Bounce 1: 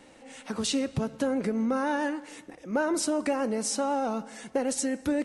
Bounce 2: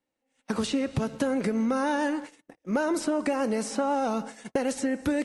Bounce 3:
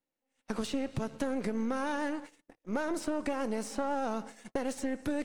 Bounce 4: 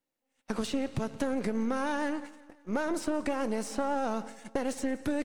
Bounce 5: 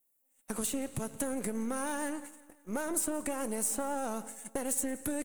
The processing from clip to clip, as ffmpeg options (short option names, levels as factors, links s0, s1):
-filter_complex "[0:a]agate=range=0.0141:threshold=0.00891:ratio=16:detection=peak,acrossover=split=1300|2700[s0][s1][s2];[s0]acompressor=threshold=0.0316:ratio=4[s3];[s1]acompressor=threshold=0.00562:ratio=4[s4];[s2]acompressor=threshold=0.00501:ratio=4[s5];[s3][s4][s5]amix=inputs=3:normalize=0,volume=2"
-af "aeval=exprs='if(lt(val(0),0),0.447*val(0),val(0))':c=same,volume=0.596"
-af "aecho=1:1:175|350|525|700:0.0891|0.0481|0.026|0.014,volume=1.26"
-af "aexciter=amount=6.4:drive=8.5:freq=7300,volume=0.596"